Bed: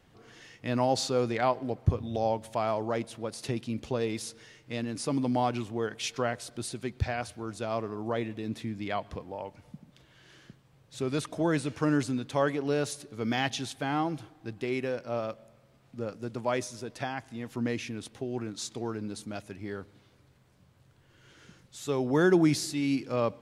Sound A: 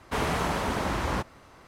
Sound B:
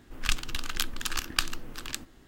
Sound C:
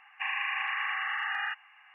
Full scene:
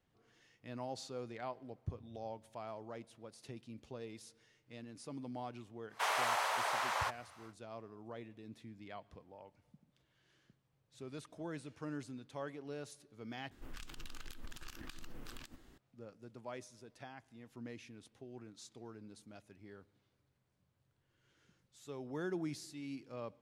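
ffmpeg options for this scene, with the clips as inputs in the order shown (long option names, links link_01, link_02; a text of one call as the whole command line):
ffmpeg -i bed.wav -i cue0.wav -i cue1.wav -filter_complex "[0:a]volume=-17dB[link_01];[1:a]highpass=frequency=660:width=0.5412,highpass=frequency=660:width=1.3066[link_02];[2:a]acompressor=threshold=-33dB:ratio=20:attack=0.19:release=67:knee=1:detection=rms[link_03];[link_01]asplit=2[link_04][link_05];[link_04]atrim=end=13.514[link_06];[link_03]atrim=end=2.27,asetpts=PTS-STARTPTS,volume=-6dB[link_07];[link_05]atrim=start=15.776[link_08];[link_02]atrim=end=1.67,asetpts=PTS-STARTPTS,volume=-3.5dB,afade=type=in:duration=0.1,afade=type=out:start_time=1.57:duration=0.1,adelay=5880[link_09];[link_06][link_07]acrossfade=duration=0.004:curve1=hsin:curve2=hsin[link_10];[link_10][link_08]acrossfade=duration=0.004:curve1=hsin:curve2=hsin[link_11];[link_11][link_09]amix=inputs=2:normalize=0" out.wav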